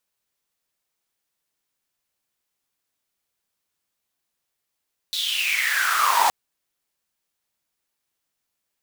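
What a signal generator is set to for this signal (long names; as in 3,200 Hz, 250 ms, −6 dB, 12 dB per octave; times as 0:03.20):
filter sweep on noise pink, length 1.17 s highpass, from 3,900 Hz, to 820 Hz, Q 9.3, gain ramp +7.5 dB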